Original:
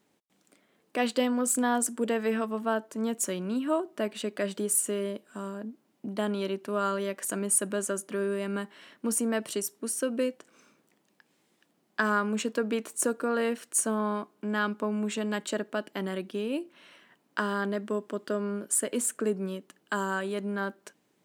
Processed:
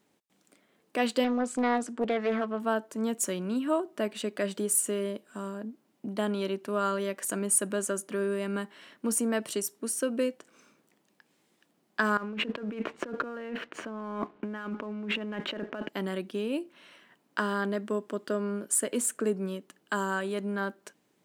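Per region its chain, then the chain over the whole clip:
1.24–2.60 s: low-pass 4.1 kHz + loudspeaker Doppler distortion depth 0.31 ms
12.17–15.89 s: low-pass 2.9 kHz 24 dB/octave + compressor with a negative ratio -39 dBFS + waveshaping leveller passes 1
whole clip: none

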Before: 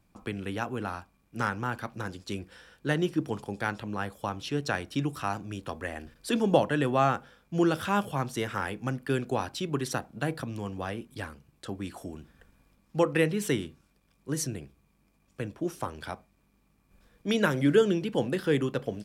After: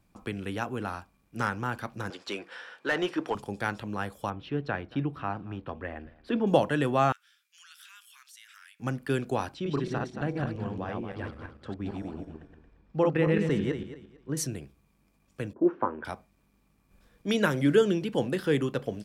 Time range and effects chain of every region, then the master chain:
2.10–3.35 s: frequency weighting A + overdrive pedal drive 19 dB, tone 1.3 kHz, clips at -14 dBFS
4.30–6.47 s: distance through air 390 m + delay 226 ms -22 dB
7.12–8.80 s: Bessel high-pass 2.6 kHz, order 8 + compression 2.5:1, threshold -53 dBFS
9.54–14.37 s: backward echo that repeats 113 ms, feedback 46%, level -1.5 dB + tape spacing loss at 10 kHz 25 dB
15.53–16.05 s: level-controlled noise filter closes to 380 Hz, open at -29.5 dBFS + cabinet simulation 130–2000 Hz, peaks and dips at 150 Hz -8 dB, 240 Hz +8 dB, 350 Hz +8 dB, 510 Hz +6 dB, 970 Hz +9 dB, 1.5 kHz +5 dB
whole clip: none

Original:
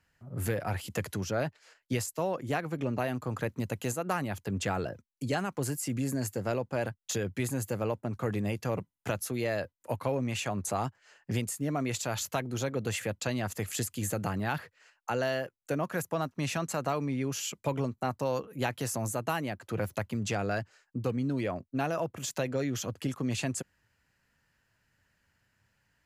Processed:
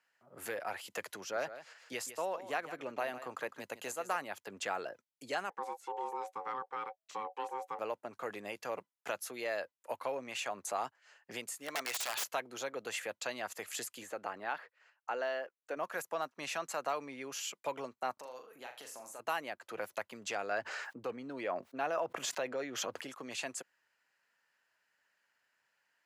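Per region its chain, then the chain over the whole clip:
1.18–4.16 s: delay 155 ms -12.5 dB + upward compressor, threshold -42 dBFS
5.50–7.79 s: low-pass 1.3 kHz 6 dB/octave + ring modulator 650 Hz
11.59–12.24 s: tilt shelf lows -6.5 dB, about 640 Hz + integer overflow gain 24.5 dB
14.03–15.77 s: low-pass 2.1 kHz 6 dB/octave + peaking EQ 140 Hz -13 dB 0.54 oct
18.13–19.20 s: peaking EQ 92 Hz -6.5 dB 1.4 oct + compression 3:1, threshold -42 dBFS + flutter echo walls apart 6.8 m, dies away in 0.32 s
20.51–23.01 s: treble shelf 3.6 kHz -9.5 dB + level flattener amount 70%
whole clip: high-pass 580 Hz 12 dB/octave; treble shelf 5.8 kHz -5.5 dB; trim -2 dB

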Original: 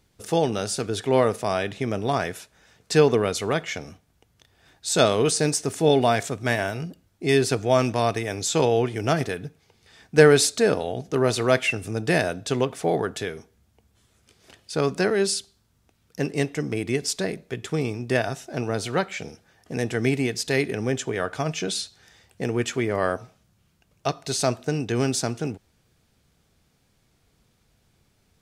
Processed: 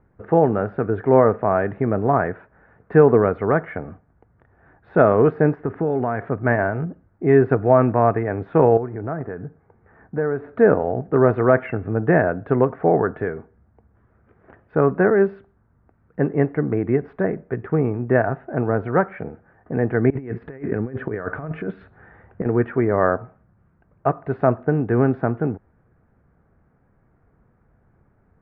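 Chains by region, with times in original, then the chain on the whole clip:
5.55–6.30 s: peaking EQ 640 Hz -4.5 dB 0.31 oct + compression 5:1, threshold -23 dBFS
8.77–10.56 s: low-pass 1.9 kHz + compression 2:1, threshold -36 dBFS
20.10–22.46 s: compressor with a negative ratio -30 dBFS, ratio -0.5 + dynamic bell 780 Hz, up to -5 dB, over -48 dBFS, Q 1.6
whole clip: steep low-pass 1.7 kHz 36 dB/octave; loudness maximiser +7 dB; trim -1 dB

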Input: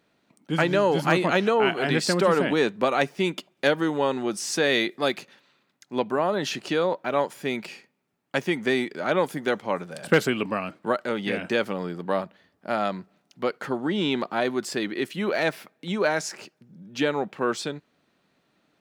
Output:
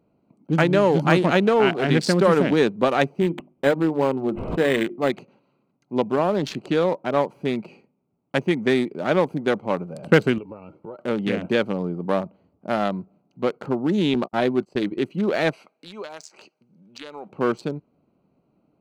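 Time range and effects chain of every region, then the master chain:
3.20–5.10 s: hum notches 50/100/150/200/250/300/350 Hz + decimation joined by straight lines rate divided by 8×
10.38–10.99 s: comb 2.2 ms, depth 54% + compression 3:1, threshold -40 dBFS
14.14–14.99 s: gate -33 dBFS, range -39 dB + doubling 16 ms -13 dB
15.53–17.29 s: frequency weighting ITU-R 468 + compression, threshold -31 dBFS
whole clip: local Wiener filter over 25 samples; bass shelf 250 Hz +6 dB; trim +2.5 dB

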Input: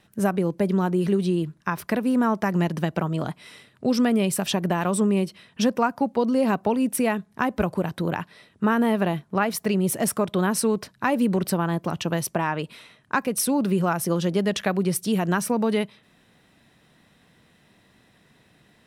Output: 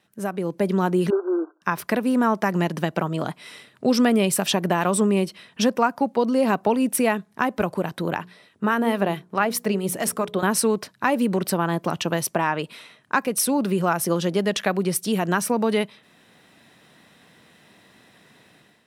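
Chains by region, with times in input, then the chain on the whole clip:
1.10–1.62 s: short-mantissa float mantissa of 2-bit + brick-wall FIR band-pass 280–1600 Hz
8.18–10.43 s: harmonic tremolo 4.6 Hz, depth 50%, crossover 910 Hz + hum notches 60/120/180/240/300/360/420/480 Hz
whole clip: high-pass 230 Hz 6 dB/octave; level rider gain up to 11 dB; trim -4.5 dB

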